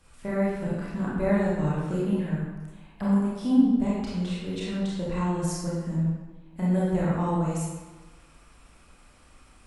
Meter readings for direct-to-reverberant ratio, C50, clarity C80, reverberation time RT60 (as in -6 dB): -7.5 dB, -2.0 dB, 1.5 dB, 1.3 s